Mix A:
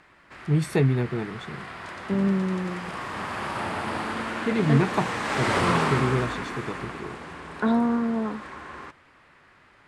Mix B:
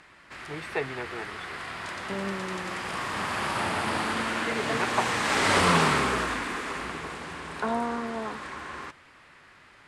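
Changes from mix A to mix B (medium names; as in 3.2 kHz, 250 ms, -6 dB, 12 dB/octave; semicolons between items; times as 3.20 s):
first voice: add three-band isolator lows -24 dB, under 470 Hz, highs -22 dB, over 2.8 kHz; second voice: add band-pass filter 800 Hz, Q 1.1; master: add treble shelf 2.4 kHz +7.5 dB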